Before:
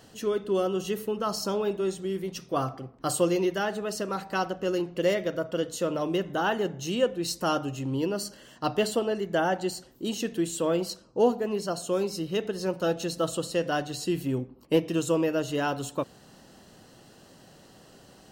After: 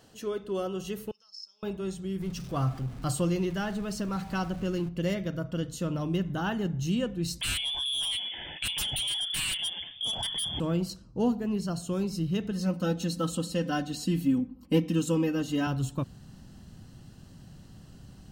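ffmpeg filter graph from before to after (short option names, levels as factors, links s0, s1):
-filter_complex "[0:a]asettb=1/sr,asplit=3[s0][s1][s2];[s0]atrim=end=1.114[s3];[s1]atrim=start=1.11:end=1.63,asetpts=PTS-STARTPTS,afade=t=in:d=0.004:c=qsin,afade=t=out:st=0.516:d=0.004:c=qsin,bandpass=f=5200:t=q:w=17,acompressor=mode=upward:threshold=0.00316:ratio=2.5:attack=3.2:release=140:knee=2.83:detection=peak[s4];[s2]atrim=start=1.626[s5];[s3][s4]acrossfade=d=0.004:c1=hsin:c2=qsin[s6];[s6][s5]acrossfade=d=0.004:c1=qsin:c2=hsin,asettb=1/sr,asplit=3[s7][s8][s9];[s7]atrim=end=2.204[s10];[s8]atrim=start=2.2:end=4.89,asetpts=PTS-STARTPTS,afade=t=in:d=0.004:c=qsin,afade=t=out:st=2.686:d=0.004:c=qsin,aeval=exprs='val(0)+0.5*0.01*sgn(val(0))':c=same,highshelf=f=11000:g=-4.5[s11];[s9]atrim=start=4.886[s12];[s10][s11]acrossfade=d=0.004:c1=hsin:c2=qsin[s13];[s13][s12]acrossfade=d=0.004:c1=qsin:c2=hsin,asettb=1/sr,asplit=3[s14][s15][s16];[s14]atrim=end=7.414[s17];[s15]atrim=start=7.41:end=10.6,asetpts=PTS-STARTPTS,afade=t=in:d=0.004:c=qsin,afade=t=out:st=3.186:d=0.004:c=qsin,lowpass=f=3100:t=q:w=0.5098,lowpass=f=3100:t=q:w=0.6013,lowpass=f=3100:t=q:w=0.9,lowpass=f=3100:t=q:w=2.563,afreqshift=-3600,aeval=exprs='0.224*sin(PI/2*4.47*val(0)/0.224)':c=same,acompressor=threshold=0.0501:ratio=5:attack=3.2:release=140:knee=1:detection=peak[s18];[s16]atrim=start=10.596[s19];[s17][s18]acrossfade=d=0.004:c1=hsin:c2=qsin[s20];[s20][s19]acrossfade=d=0.004:c1=qsin:c2=hsin,asettb=1/sr,asplit=3[s21][s22][s23];[s21]atrim=end=12.514[s24];[s22]atrim=start=12.51:end=15.67,asetpts=PTS-STARTPTS,afade=t=in:d=0.004:c=qsin,afade=t=out:st=3.156:d=0.004:c=qsin,highpass=96,aecho=1:1:3.9:0.85,atrim=end_sample=139356[s25];[s23]atrim=start=15.666[s26];[s24][s25]acrossfade=d=0.004:c1=hsin:c2=qsin[s27];[s27][s26]acrossfade=d=0.004:c1=qsin:c2=hsin,bandreject=f=1900:w=28,asubboost=boost=10:cutoff=150,volume=0.596"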